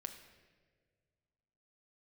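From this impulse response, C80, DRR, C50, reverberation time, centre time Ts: 10.5 dB, 5.5 dB, 9.0 dB, 1.7 s, 20 ms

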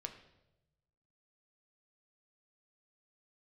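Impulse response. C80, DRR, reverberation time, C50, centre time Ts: 12.0 dB, 5.0 dB, 0.95 s, 10.0 dB, 14 ms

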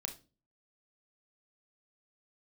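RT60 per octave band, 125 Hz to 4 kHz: 0.55, 0.50, 0.40, 0.25, 0.25, 0.30 seconds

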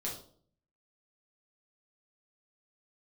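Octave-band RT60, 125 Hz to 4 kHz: 0.85, 0.70, 0.60, 0.45, 0.35, 0.40 seconds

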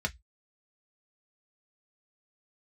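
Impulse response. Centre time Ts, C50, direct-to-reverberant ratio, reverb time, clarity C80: 4 ms, 26.5 dB, 3.0 dB, 0.10 s, 39.5 dB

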